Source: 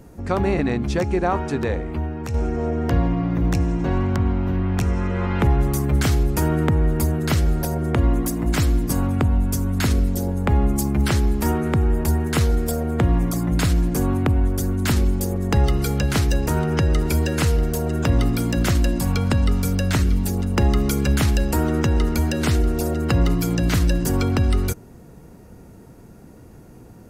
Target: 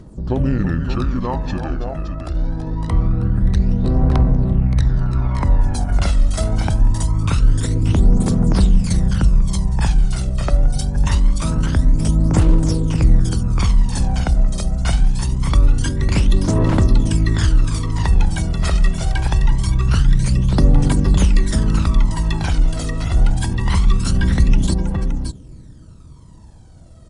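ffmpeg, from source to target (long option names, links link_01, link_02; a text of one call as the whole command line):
ffmpeg -i in.wav -af "aecho=1:1:184|329|571:0.119|0.355|0.501,asetrate=30296,aresample=44100,atempo=1.45565,aphaser=in_gain=1:out_gain=1:delay=1.6:decay=0.59:speed=0.24:type=triangular,volume=-2dB" out.wav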